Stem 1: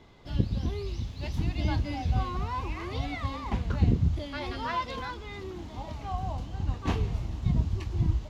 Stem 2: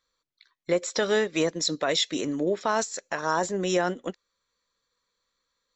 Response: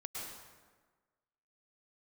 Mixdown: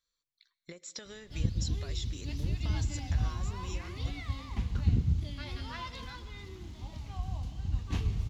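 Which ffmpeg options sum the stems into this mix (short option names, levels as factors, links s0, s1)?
-filter_complex "[0:a]adelay=1050,volume=0.75,asplit=2[s0][s1];[s1]volume=0.376[s2];[1:a]acompressor=threshold=0.0282:ratio=16,volume=0.596,asplit=2[s3][s4];[s4]volume=0.1[s5];[2:a]atrim=start_sample=2205[s6];[s2][s5]amix=inputs=2:normalize=0[s7];[s7][s6]afir=irnorm=-1:irlink=0[s8];[s0][s3][s8]amix=inputs=3:normalize=0,equalizer=f=670:w=0.4:g=-13"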